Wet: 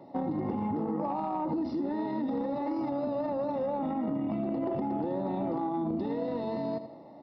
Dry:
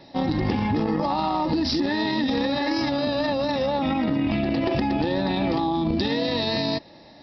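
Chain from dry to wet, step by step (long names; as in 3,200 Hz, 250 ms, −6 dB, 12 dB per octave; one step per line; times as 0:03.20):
high-pass filter 160 Hz 12 dB per octave
repeating echo 81 ms, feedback 31%, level −13.5 dB
downward compressor 4 to 1, threshold −28 dBFS, peak gain reduction 7.5 dB
Savitzky-Golay smoothing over 65 samples
soft clipping −20 dBFS, distortion −26 dB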